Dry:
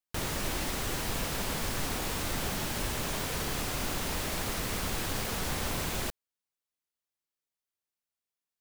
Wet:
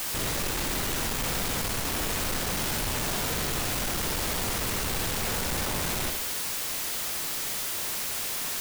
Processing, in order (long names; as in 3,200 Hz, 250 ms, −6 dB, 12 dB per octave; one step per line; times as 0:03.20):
sign of each sample alone
flutter between parallel walls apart 11.4 metres, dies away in 0.51 s
level +4.5 dB